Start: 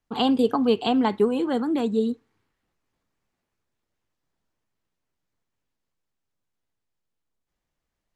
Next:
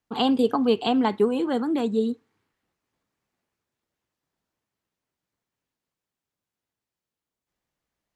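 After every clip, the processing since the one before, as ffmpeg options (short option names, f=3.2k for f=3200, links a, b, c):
-af "highpass=f=95:p=1"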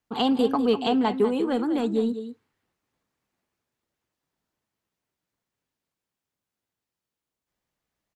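-filter_complex "[0:a]aecho=1:1:198:0.282,asplit=2[a][b];[b]asoftclip=type=tanh:threshold=-24.5dB,volume=-11.5dB[c];[a][c]amix=inputs=2:normalize=0,volume=-2dB"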